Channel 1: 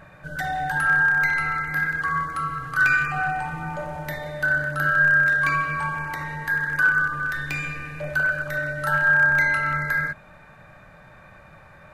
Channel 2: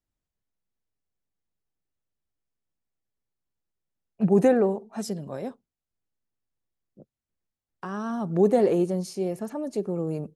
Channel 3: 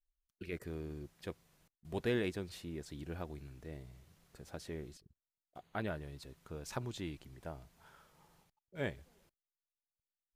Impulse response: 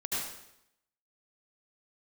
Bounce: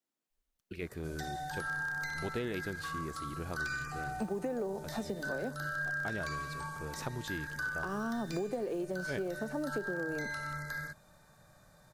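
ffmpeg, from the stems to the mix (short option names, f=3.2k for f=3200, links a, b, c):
-filter_complex "[0:a]acrossover=split=5900[a][b];[b]acompressor=threshold=-59dB:ratio=4:attack=1:release=60[c];[a][c]amix=inputs=2:normalize=0,highshelf=f=2k:g=-11.5,aexciter=amount=13.8:drive=6.6:freq=3.9k,adelay=800,volume=-12dB[d];[1:a]acrossover=split=720|3700[e][f][g];[e]acompressor=threshold=-25dB:ratio=4[h];[f]acompressor=threshold=-40dB:ratio=4[i];[g]acompressor=threshold=-54dB:ratio=4[j];[h][i][j]amix=inputs=3:normalize=0,acrusher=bits=9:mode=log:mix=0:aa=0.000001,highpass=f=210:w=0.5412,highpass=f=210:w=1.3066,volume=0dB,asplit=2[k][l];[2:a]adelay=300,volume=2.5dB[m];[l]apad=whole_len=469975[n];[m][n]sidechaincompress=threshold=-38dB:ratio=8:attack=16:release=189[o];[d][k][o]amix=inputs=3:normalize=0,acompressor=threshold=-32dB:ratio=10"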